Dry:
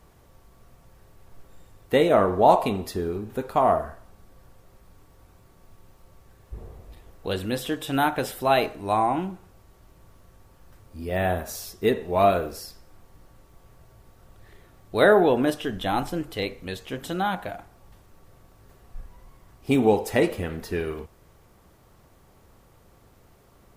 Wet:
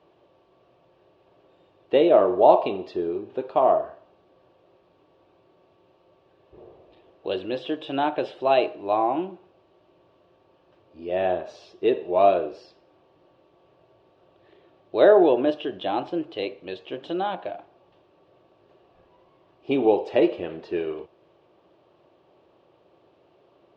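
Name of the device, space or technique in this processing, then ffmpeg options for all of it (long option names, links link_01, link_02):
kitchen radio: -af "highpass=210,equalizer=frequency=220:width_type=q:width=4:gain=-9,equalizer=frequency=350:width_type=q:width=4:gain=8,equalizer=frequency=600:width_type=q:width=4:gain=7,equalizer=frequency=1400:width_type=q:width=4:gain=-6,equalizer=frequency=2000:width_type=q:width=4:gain=-8,equalizer=frequency=2800:width_type=q:width=4:gain=4,lowpass=frequency=3800:width=0.5412,lowpass=frequency=3800:width=1.3066,volume=-2dB"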